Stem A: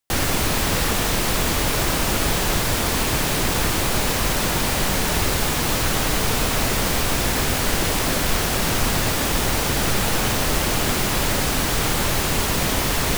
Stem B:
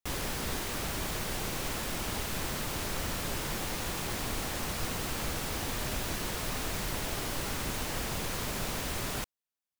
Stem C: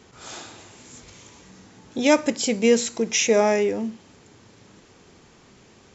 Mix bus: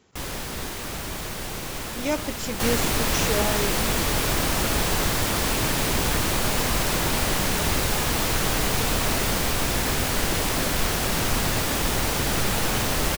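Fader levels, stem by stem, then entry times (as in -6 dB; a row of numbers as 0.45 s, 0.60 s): -3.0 dB, +2.5 dB, -9.0 dB; 2.50 s, 0.10 s, 0.00 s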